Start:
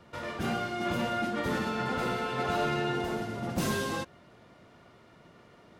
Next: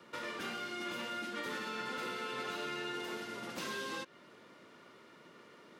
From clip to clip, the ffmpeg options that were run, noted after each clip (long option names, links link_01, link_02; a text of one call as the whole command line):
ffmpeg -i in.wav -filter_complex "[0:a]acrossover=split=510|1900|5400[link_01][link_02][link_03][link_04];[link_01]acompressor=threshold=-44dB:ratio=4[link_05];[link_02]acompressor=threshold=-44dB:ratio=4[link_06];[link_03]acompressor=threshold=-46dB:ratio=4[link_07];[link_04]acompressor=threshold=-60dB:ratio=4[link_08];[link_05][link_06][link_07][link_08]amix=inputs=4:normalize=0,highpass=270,equalizer=frequency=710:width_type=o:width=0.4:gain=-10.5,volume=1.5dB" out.wav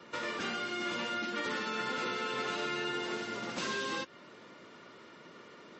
ffmpeg -i in.wav -af "volume=5dB" -ar 32000 -c:a libmp3lame -b:a 32k out.mp3